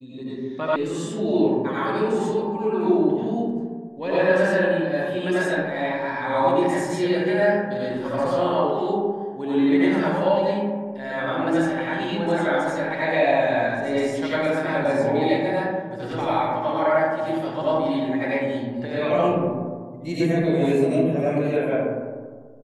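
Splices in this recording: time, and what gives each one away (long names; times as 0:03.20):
0:00.76: cut off before it has died away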